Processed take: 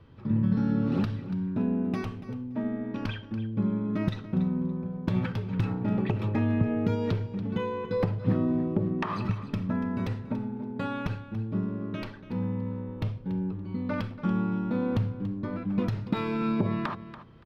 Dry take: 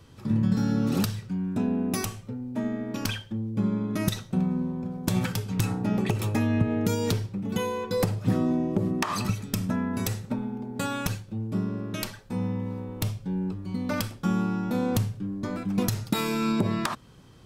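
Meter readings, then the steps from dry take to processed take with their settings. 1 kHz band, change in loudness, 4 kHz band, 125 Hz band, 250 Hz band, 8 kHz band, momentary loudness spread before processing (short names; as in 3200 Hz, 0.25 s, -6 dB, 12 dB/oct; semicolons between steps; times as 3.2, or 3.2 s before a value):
-3.0 dB, -1.5 dB, -10.0 dB, -1.0 dB, -1.0 dB, under -25 dB, 7 LU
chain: air absorption 350 m; notch 740 Hz, Q 18; on a send: feedback echo 0.285 s, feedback 18%, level -14 dB; on the sum: gain -1 dB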